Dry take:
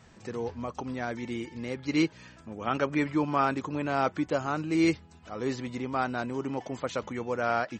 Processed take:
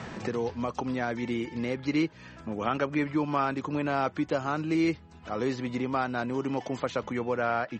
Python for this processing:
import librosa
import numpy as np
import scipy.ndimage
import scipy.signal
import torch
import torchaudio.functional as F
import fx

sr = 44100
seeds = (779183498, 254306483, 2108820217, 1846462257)

y = fx.lowpass(x, sr, hz=fx.steps((0.0, 6000.0), (7.19, 3500.0)), slope=12)
y = fx.band_squash(y, sr, depth_pct=70)